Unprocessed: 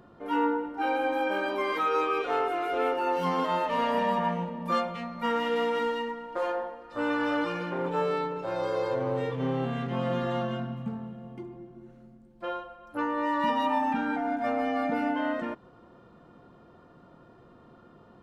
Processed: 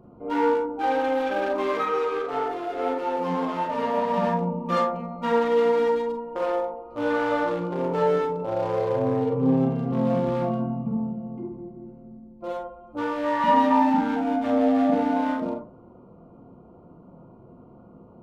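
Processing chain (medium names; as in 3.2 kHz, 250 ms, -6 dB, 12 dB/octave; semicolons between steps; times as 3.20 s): local Wiener filter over 25 samples; 1.85–4.14 s: flange 1.7 Hz, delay 5.8 ms, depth 4.7 ms, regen +68%; reverberation RT60 0.35 s, pre-delay 32 ms, DRR 0.5 dB; trim +2.5 dB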